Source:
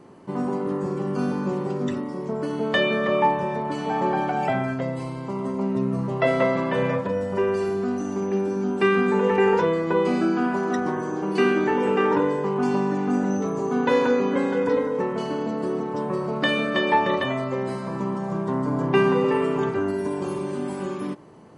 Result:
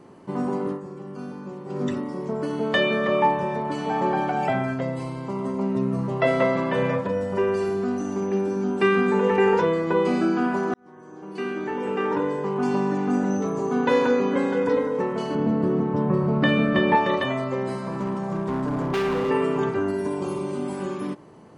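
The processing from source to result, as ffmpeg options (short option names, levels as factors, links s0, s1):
-filter_complex "[0:a]asettb=1/sr,asplit=3[s0][s1][s2];[s0]atrim=end=15.354[s3];[s1]atrim=start=15.35:end=16.95,asetpts=PTS-STARTPTS,afade=t=in:d=0.004:c=qsin,afade=t=out:st=1.596:d=0.004:c=qsin,bass=f=250:g=12,treble=f=4000:g=-12[s4];[s2]atrim=start=16.946[s5];[s3][s4]acrossfade=d=0.004:c1=hsin:c2=qsin[s6];[s6][s5]acrossfade=d=0.004:c1=qsin:c2=hsin,asettb=1/sr,asplit=3[s7][s8][s9];[s7]atrim=end=17.884[s10];[s8]atrim=start=17.88:end=19.3,asetpts=PTS-STARTPTS,afade=t=in:d=0.004:c=qsin,afade=t=out:st=1.416:d=0.004:c=qsin,asoftclip=type=hard:threshold=0.0841[s11];[s9]atrim=start=19.296[s12];[s10][s11]acrossfade=d=0.004:c1=hsin:c2=qsin[s13];[s13][s12]acrossfade=d=0.004:c1=qsin:c2=hsin,asettb=1/sr,asplit=3[s14][s15][s16];[s14]atrim=end=20.154[s17];[s15]atrim=start=20.15:end=20.73,asetpts=PTS-STARTPTS,afade=t=in:d=0.004:c=qsin,afade=t=out:st=0.576:d=0.004:c=qsin,bandreject=f=1700:w=6.1[s18];[s16]atrim=start=20.726[s19];[s17][s18]acrossfade=d=0.004:c1=hsin:c2=qsin[s20];[s20][s19]acrossfade=d=0.004:c1=qsin:c2=hsin,asplit=4[s21][s22][s23][s24];[s21]atrim=end=0.81,asetpts=PTS-STARTPTS,afade=t=out:st=0.67:d=0.14:silence=0.298538[s25];[s22]atrim=start=0.81:end=1.66,asetpts=PTS-STARTPTS,volume=0.299[s26];[s23]atrim=start=1.66:end=10.74,asetpts=PTS-STARTPTS,afade=t=in:d=0.14:silence=0.298538,afade=t=out:st=9.076:d=0.004:c=hsin[s27];[s24]atrim=start=10.74,asetpts=PTS-STARTPTS,afade=t=in:d=2.14[s28];[s25][s26][s27][s28]concat=n=4:v=0:a=1"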